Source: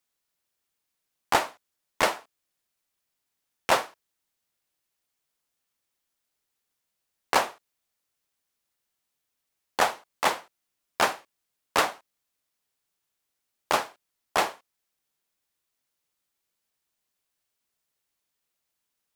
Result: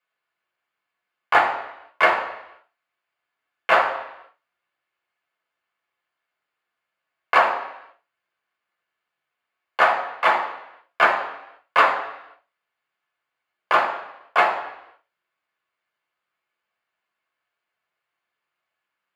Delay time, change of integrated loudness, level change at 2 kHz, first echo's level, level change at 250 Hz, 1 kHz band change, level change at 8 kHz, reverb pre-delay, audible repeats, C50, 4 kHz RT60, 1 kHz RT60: no echo audible, +6.5 dB, +9.5 dB, no echo audible, −0.5 dB, +8.0 dB, below −10 dB, 3 ms, no echo audible, 7.5 dB, 0.90 s, 0.85 s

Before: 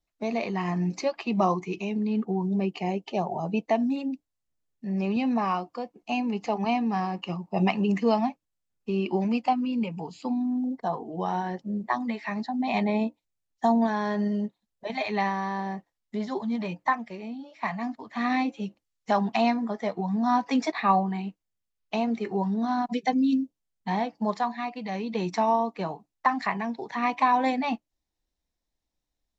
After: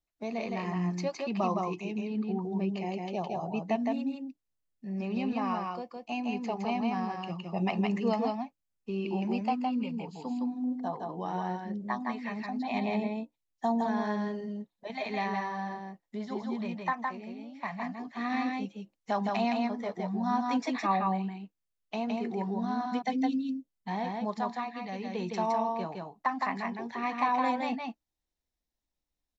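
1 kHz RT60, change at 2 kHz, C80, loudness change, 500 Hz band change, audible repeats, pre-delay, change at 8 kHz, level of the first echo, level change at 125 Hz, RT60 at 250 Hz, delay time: no reverb audible, −4.5 dB, no reverb audible, −5.0 dB, −5.0 dB, 1, no reverb audible, can't be measured, −3.0 dB, −4.5 dB, no reverb audible, 163 ms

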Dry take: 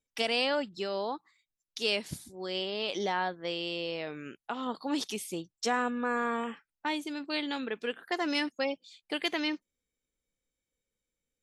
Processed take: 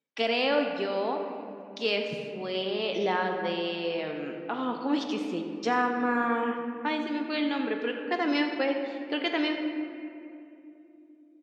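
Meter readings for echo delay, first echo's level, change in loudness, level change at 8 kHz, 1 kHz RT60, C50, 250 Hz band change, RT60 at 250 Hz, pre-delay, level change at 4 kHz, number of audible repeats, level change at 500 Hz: 85 ms, −14.5 dB, +3.5 dB, can't be measured, 2.4 s, 5.0 dB, +6.0 dB, 4.4 s, 3 ms, 0.0 dB, 1, +5.0 dB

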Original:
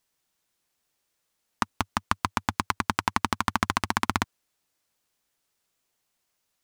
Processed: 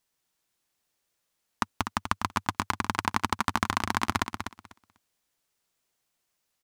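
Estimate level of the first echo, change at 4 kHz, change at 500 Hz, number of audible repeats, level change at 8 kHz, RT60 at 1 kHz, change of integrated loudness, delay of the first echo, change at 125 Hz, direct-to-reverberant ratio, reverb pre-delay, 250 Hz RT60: −8.0 dB, −1.5 dB, −1.5 dB, 2, −1.5 dB, no reverb audible, −1.5 dB, 247 ms, −1.0 dB, no reverb audible, no reverb audible, no reverb audible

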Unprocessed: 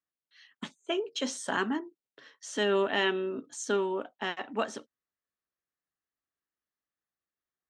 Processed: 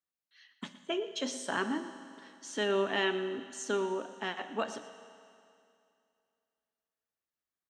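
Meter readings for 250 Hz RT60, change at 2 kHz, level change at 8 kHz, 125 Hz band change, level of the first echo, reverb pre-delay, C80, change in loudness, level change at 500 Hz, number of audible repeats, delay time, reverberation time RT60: 2.5 s, −2.5 dB, −2.5 dB, can't be measured, −16.5 dB, 11 ms, 11.0 dB, −3.0 dB, −2.5 dB, 1, 117 ms, 2.5 s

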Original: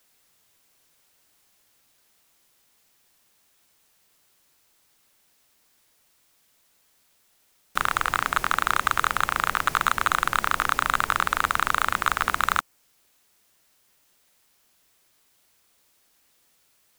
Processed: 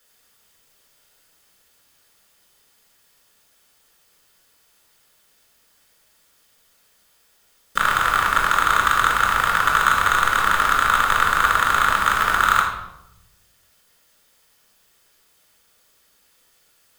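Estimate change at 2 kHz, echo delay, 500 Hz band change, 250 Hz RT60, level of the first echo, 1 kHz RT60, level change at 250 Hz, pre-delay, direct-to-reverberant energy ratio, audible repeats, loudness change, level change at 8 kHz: +6.5 dB, no echo audible, +5.5 dB, 1.2 s, no echo audible, 0.80 s, +4.0 dB, 4 ms, −2.0 dB, no echo audible, +6.5 dB, +4.5 dB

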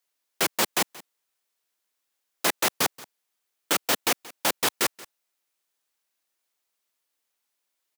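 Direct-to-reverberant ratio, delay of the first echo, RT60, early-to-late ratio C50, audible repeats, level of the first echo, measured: no reverb audible, 179 ms, no reverb audible, no reverb audible, 1, −20.5 dB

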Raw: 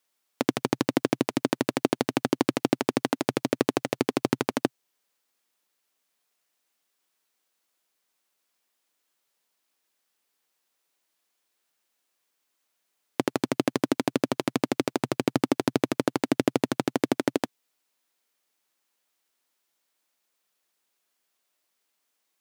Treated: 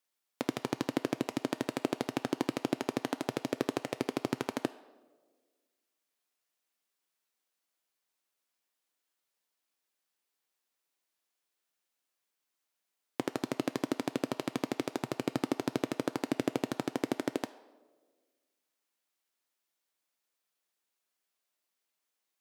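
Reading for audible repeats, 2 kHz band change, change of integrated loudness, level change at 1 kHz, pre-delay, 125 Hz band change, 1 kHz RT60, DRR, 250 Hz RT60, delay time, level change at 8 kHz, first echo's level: no echo audible, −7.5 dB, −8.0 dB, −7.5 dB, 7 ms, −8.0 dB, 1.1 s, 11.5 dB, 1.7 s, no echo audible, −8.0 dB, no echo audible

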